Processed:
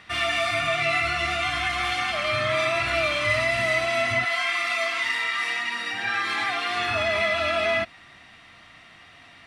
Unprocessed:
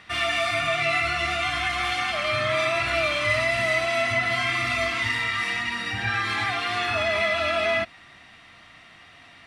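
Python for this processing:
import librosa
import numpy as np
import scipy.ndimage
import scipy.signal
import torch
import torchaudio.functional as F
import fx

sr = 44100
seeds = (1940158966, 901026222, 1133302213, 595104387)

y = fx.highpass(x, sr, hz=fx.line((4.24, 670.0), (6.76, 220.0)), slope=12, at=(4.24, 6.76), fade=0.02)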